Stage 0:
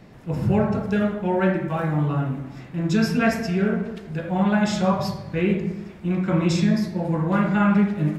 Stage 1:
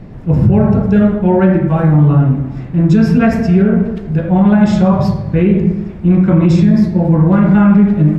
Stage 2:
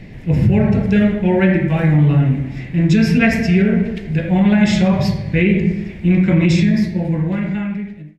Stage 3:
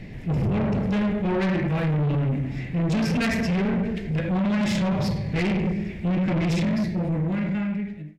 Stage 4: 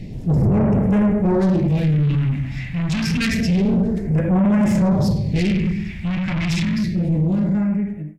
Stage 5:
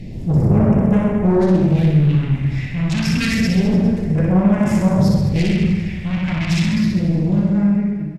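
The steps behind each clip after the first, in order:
tilt -3 dB/oct; maximiser +8 dB; gain -1 dB
ending faded out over 1.76 s; resonant high shelf 1600 Hz +8 dB, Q 3; gain -3.5 dB
soft clip -18 dBFS, distortion -8 dB; gain -2.5 dB
phaser stages 2, 0.28 Hz, lowest notch 400–3900 Hz; gain +6 dB
reverse bouncing-ball echo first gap 60 ms, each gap 1.15×, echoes 5; plate-style reverb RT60 3.9 s, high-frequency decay 0.75×, DRR 15.5 dB; downsampling 32000 Hz

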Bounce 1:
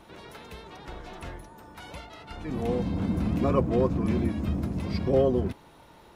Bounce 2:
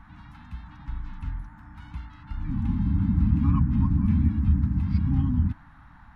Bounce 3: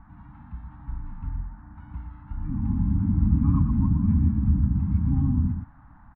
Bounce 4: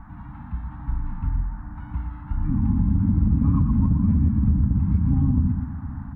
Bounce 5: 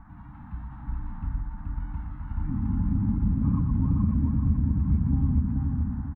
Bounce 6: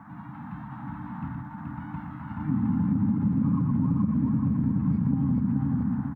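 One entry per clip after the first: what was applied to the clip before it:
RIAA curve playback; FFT band-reject 310–790 Hz; band noise 740–1800 Hz -52 dBFS; gain -5.5 dB
LPF 1100 Hz 12 dB/oct; echo 0.118 s -7 dB
reverb RT60 5.1 s, pre-delay 52 ms, DRR 17.5 dB; in parallel at -9 dB: overloaded stage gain 15.5 dB; on the sum: compressor 2.5:1, threshold -23 dBFS, peak gain reduction 7 dB; gain +5 dB
feedback echo 0.428 s, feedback 45%, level -3 dB; ending taper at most 220 dB/s; gain -6 dB
HPF 130 Hz 24 dB/oct; compressor, threshold -28 dBFS, peak gain reduction 7.5 dB; gain +7.5 dB

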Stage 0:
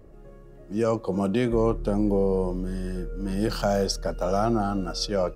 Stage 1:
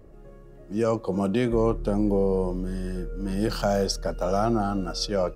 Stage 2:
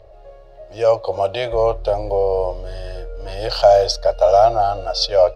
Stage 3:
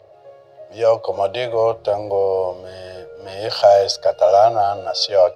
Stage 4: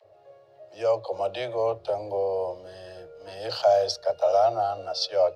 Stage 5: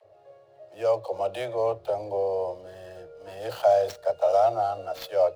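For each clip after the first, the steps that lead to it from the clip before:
nothing audible
EQ curve 100 Hz 0 dB, 220 Hz -29 dB, 630 Hz +14 dB, 1200 Hz -1 dB, 1800 Hz +1 dB, 4200 Hz +11 dB, 7400 Hz -6 dB, 13000 Hz -9 dB; gain +3 dB
HPF 110 Hz 24 dB/oct
dispersion lows, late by 45 ms, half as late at 310 Hz; gain -8.5 dB
median filter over 9 samples

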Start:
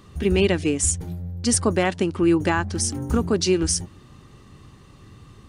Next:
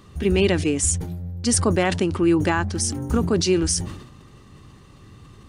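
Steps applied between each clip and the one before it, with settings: sustainer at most 69 dB/s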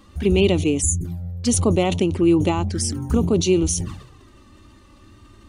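spectral gain 0.82–1.05, 430–6000 Hz -22 dB; envelope flanger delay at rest 3.9 ms, full sweep at -18.5 dBFS; gain +2.5 dB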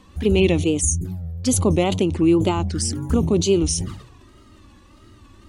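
wow and flutter 110 cents

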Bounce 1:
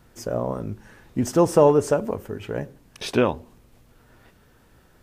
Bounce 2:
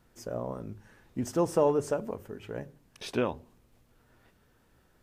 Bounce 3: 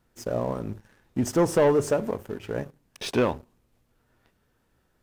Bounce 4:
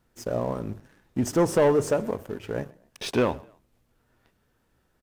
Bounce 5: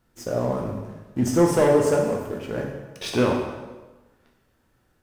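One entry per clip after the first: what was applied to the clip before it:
notches 50/100/150 Hz; gain -9 dB
sample leveller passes 2
frequency-shifting echo 0.128 s, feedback 34%, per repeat +40 Hz, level -24 dB
plate-style reverb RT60 1.2 s, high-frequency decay 0.85×, DRR 0 dB

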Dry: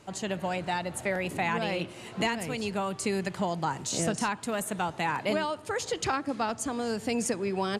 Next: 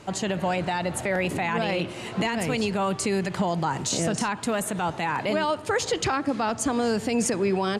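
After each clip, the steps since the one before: high shelf 8400 Hz -7 dB; limiter -24 dBFS, peak gain reduction 8 dB; gain +8.5 dB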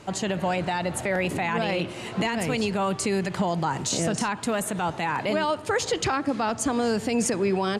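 nothing audible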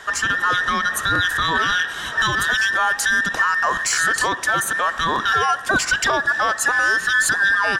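band inversion scrambler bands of 2000 Hz; in parallel at -8.5 dB: soft clip -29 dBFS, distortion -7 dB; on the sum: gain +5 dB

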